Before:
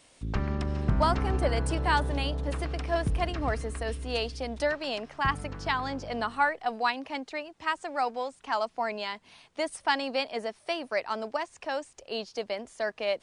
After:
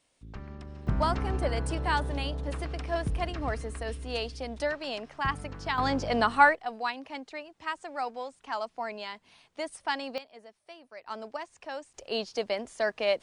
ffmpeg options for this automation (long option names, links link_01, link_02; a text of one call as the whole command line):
ffmpeg -i in.wav -af "asetnsamples=nb_out_samples=441:pad=0,asendcmd='0.87 volume volume -2.5dB;5.78 volume volume 6dB;6.55 volume volume -4.5dB;10.18 volume volume -17dB;11.07 volume volume -6dB;11.94 volume volume 2.5dB',volume=-13dB" out.wav